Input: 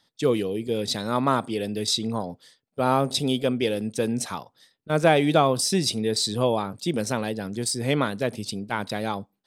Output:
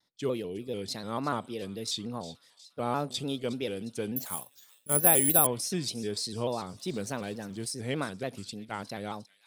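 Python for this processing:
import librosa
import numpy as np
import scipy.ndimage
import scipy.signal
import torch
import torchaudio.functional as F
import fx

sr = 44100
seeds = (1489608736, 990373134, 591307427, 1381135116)

y = fx.law_mismatch(x, sr, coded='mu', at=(6.69, 7.66))
y = fx.echo_wet_highpass(y, sr, ms=358, feedback_pct=54, hz=2800.0, wet_db=-14.5)
y = fx.resample_bad(y, sr, factor=4, down='filtered', up='zero_stuff', at=(4.16, 5.47))
y = fx.vibrato_shape(y, sr, shape='square', rate_hz=3.4, depth_cents=100.0)
y = y * librosa.db_to_amplitude(-9.0)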